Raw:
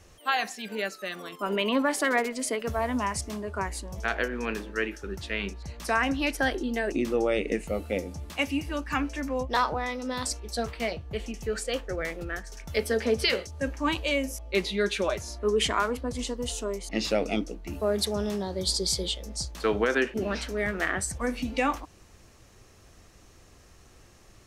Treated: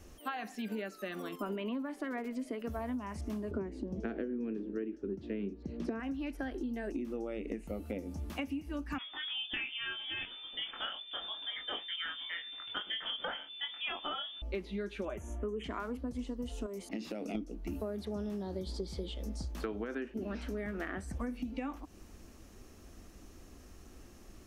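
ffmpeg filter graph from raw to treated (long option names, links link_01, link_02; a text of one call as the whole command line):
ffmpeg -i in.wav -filter_complex "[0:a]asettb=1/sr,asplit=3[link_01][link_02][link_03];[link_01]atrim=end=3.514[link_04];[link_02]atrim=start=3.51:end=6,asetpts=PTS-STARTPTS,afade=type=in:duration=0.004:curve=qsin,afade=type=out:start_time=2.486:duration=0.004:curve=qsin,highpass=140,lowpass=4300,lowshelf=frequency=590:width_type=q:width=1.5:gain=12.5[link_05];[link_03]atrim=start=5.996[link_06];[link_04][link_05]acrossfade=duration=0.004:curve1=hsin:curve2=qsin[link_07];[link_07][link_06]acrossfade=duration=0.004:curve1=qsin:curve2=hsin,asettb=1/sr,asplit=3[link_08][link_09][link_10];[link_08]atrim=end=8.984[link_11];[link_09]atrim=start=8.98:end=14.42,asetpts=PTS-STARTPTS,afade=type=in:duration=0.004:curve=qsin,afade=type=out:start_time=5.436:duration=0.004:curve=qsin,asplit=2[link_12][link_13];[link_13]adelay=22,volume=-3dB[link_14];[link_12][link_14]amix=inputs=2:normalize=0,atrim=end_sample=239904,lowpass=frequency=3100:width_type=q:width=0.5098,lowpass=frequency=3100:width_type=q:width=0.6013,lowpass=frequency=3100:width_type=q:width=0.9,lowpass=frequency=3100:width_type=q:width=2.563,afreqshift=-3600[link_15];[link_10]atrim=start=14.416[link_16];[link_11][link_15]acrossfade=duration=0.004:curve1=hsin:curve2=qsin[link_17];[link_17][link_16]acrossfade=duration=0.004:curve1=qsin:curve2=hsin,asettb=1/sr,asplit=3[link_18][link_19][link_20];[link_18]atrim=end=15.054[link_21];[link_19]atrim=start=15.05:end=15.64,asetpts=PTS-STARTPTS,afade=type=in:duration=0.004:curve=qsin,afade=type=out:start_time=0.586:duration=0.004:curve=qsin,asuperstop=centerf=4600:order=8:qfactor=1.6,highshelf=frequency=11000:gain=-10[link_22];[link_20]atrim=start=15.636[link_23];[link_21][link_22]acrossfade=duration=0.004:curve1=hsin:curve2=qsin[link_24];[link_24][link_23]acrossfade=duration=0.004:curve1=qsin:curve2=hsin,asettb=1/sr,asplit=3[link_25][link_26][link_27];[link_25]atrim=end=16.664[link_28];[link_26]atrim=start=16.66:end=17.35,asetpts=PTS-STARTPTS,afade=type=in:duration=0.004:curve=qsin,afade=type=out:start_time=0.686:duration=0.004:curve=qsin,highpass=frequency=95:width=0.5412,highpass=frequency=95:width=1.3066,highshelf=frequency=10000:gain=7,acompressor=threshold=-34dB:ratio=6:attack=3.2:release=140:knee=1:detection=peak[link_29];[link_27]atrim=start=17.346[link_30];[link_28][link_29]acrossfade=duration=0.004:curve1=hsin:curve2=qsin[link_31];[link_31][link_30]acrossfade=duration=0.004:curve1=qsin:curve2=hsin,acrossover=split=3100[link_32][link_33];[link_33]acompressor=threshold=-48dB:ratio=4:attack=1:release=60[link_34];[link_32][link_34]amix=inputs=2:normalize=0,equalizer=frequency=125:width_type=o:width=1:gain=-10,equalizer=frequency=250:width_type=o:width=1:gain=6,equalizer=frequency=500:width_type=o:width=1:gain=-5,equalizer=frequency=1000:width_type=o:width=1:gain=-5,equalizer=frequency=2000:width_type=o:width=1:gain=-6,equalizer=frequency=4000:width_type=o:width=1:gain=-6,equalizer=frequency=8000:width_type=o:width=1:gain=-6,acompressor=threshold=-38dB:ratio=12,volume=3.5dB" out.wav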